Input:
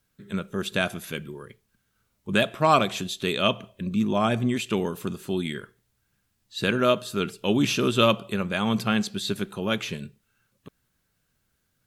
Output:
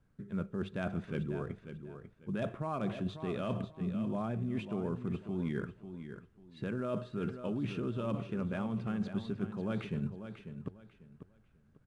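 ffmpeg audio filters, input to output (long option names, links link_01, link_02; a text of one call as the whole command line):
ffmpeg -i in.wav -af "lowpass=1600,lowshelf=frequency=290:gain=8.5,bandreject=frequency=50:width_type=h:width=6,bandreject=frequency=100:width_type=h:width=6,alimiter=limit=-16dB:level=0:latency=1:release=74,areverse,acompressor=threshold=-32dB:ratio=16,areverse,aecho=1:1:544|1088|1632:0.316|0.0822|0.0214" -ar 22050 -c:a adpcm_ima_wav out.wav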